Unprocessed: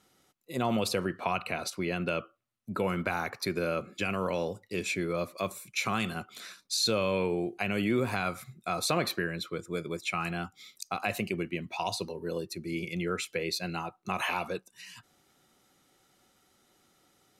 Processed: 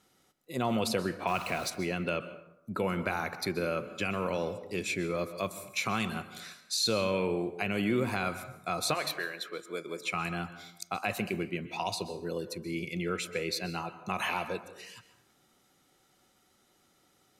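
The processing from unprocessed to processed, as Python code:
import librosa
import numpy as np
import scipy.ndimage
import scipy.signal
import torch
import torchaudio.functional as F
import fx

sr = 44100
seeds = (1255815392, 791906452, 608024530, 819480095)

y = fx.zero_step(x, sr, step_db=-38.5, at=(1.27, 1.7))
y = fx.highpass(y, sr, hz=fx.line((8.93, 710.0), (9.99, 280.0)), slope=12, at=(8.93, 9.99), fade=0.02)
y = fx.rev_plate(y, sr, seeds[0], rt60_s=0.8, hf_ratio=0.55, predelay_ms=115, drr_db=12.5)
y = F.gain(torch.from_numpy(y), -1.0).numpy()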